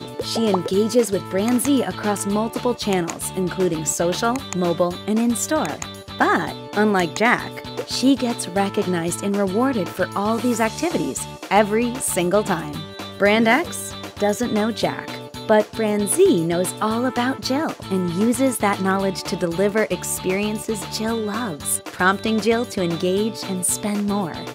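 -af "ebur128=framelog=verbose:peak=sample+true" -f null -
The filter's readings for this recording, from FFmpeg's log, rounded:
Integrated loudness:
  I:         -20.9 LUFS
  Threshold: -31.0 LUFS
Loudness range:
  LRA:         1.9 LU
  Threshold: -41.0 LUFS
  LRA low:   -21.9 LUFS
  LRA high:  -20.1 LUFS
Sample peak:
  Peak:       -2.6 dBFS
True peak:
  Peak:       -2.6 dBFS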